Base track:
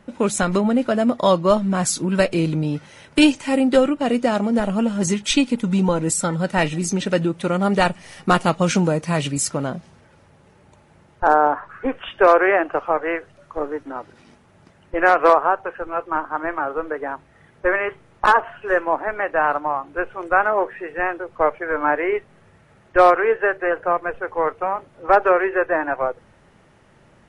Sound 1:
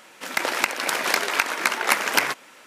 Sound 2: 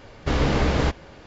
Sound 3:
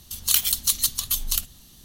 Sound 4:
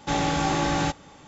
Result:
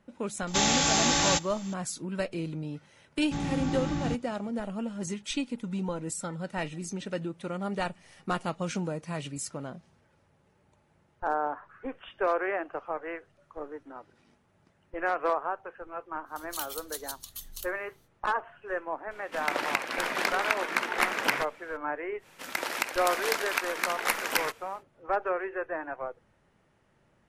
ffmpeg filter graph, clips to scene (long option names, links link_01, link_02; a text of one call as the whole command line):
ffmpeg -i bed.wav -i cue0.wav -i cue1.wav -i cue2.wav -i cue3.wav -filter_complex "[4:a]asplit=2[link_01][link_02];[1:a]asplit=2[link_03][link_04];[0:a]volume=-14dB[link_05];[link_01]crystalizer=i=7:c=0[link_06];[link_02]lowshelf=frequency=350:width_type=q:width=1.5:gain=8.5[link_07];[link_03]bass=frequency=250:gain=5,treble=frequency=4000:gain=-7[link_08];[link_04]equalizer=frequency=13000:width_type=o:width=0.55:gain=3.5[link_09];[link_06]atrim=end=1.27,asetpts=PTS-STARTPTS,volume=-6dB,afade=type=in:duration=0.004:curve=hsin,afade=type=out:start_time=1.266:duration=0.004:curve=hsin,adelay=470[link_10];[link_07]atrim=end=1.27,asetpts=PTS-STARTPTS,volume=-13dB,afade=type=in:duration=0.004:curve=hsin,afade=type=out:start_time=1.266:duration=0.004:curve=hsin,adelay=3240[link_11];[3:a]atrim=end=1.84,asetpts=PTS-STARTPTS,volume=-17.5dB,afade=type=in:duration=0.05,afade=type=out:start_time=1.79:duration=0.05,adelay=16250[link_12];[link_08]atrim=end=2.66,asetpts=PTS-STARTPTS,volume=-5.5dB,afade=type=in:duration=0.004:curve=hsin,afade=type=out:start_time=2.656:duration=0.004:curve=hsin,adelay=19110[link_13];[link_09]atrim=end=2.66,asetpts=PTS-STARTPTS,volume=-8dB,afade=type=in:duration=0.1,afade=type=out:start_time=2.56:duration=0.1,adelay=22180[link_14];[link_05][link_10][link_11][link_12][link_13][link_14]amix=inputs=6:normalize=0" out.wav